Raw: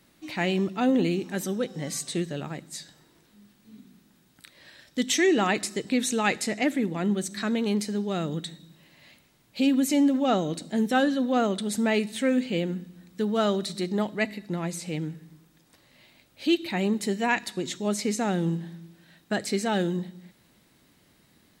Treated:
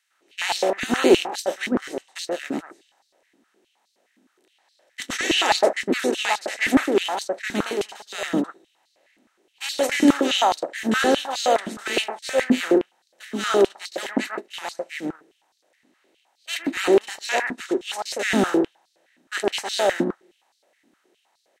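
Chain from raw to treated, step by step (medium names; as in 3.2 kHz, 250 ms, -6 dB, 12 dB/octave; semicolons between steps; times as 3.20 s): spectral levelling over time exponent 0.4; gate -18 dBFS, range -36 dB; transient shaper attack -4 dB, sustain +1 dB; bands offset in time highs, lows 110 ms, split 1.4 kHz; step-sequenced high-pass 9.6 Hz 250–4400 Hz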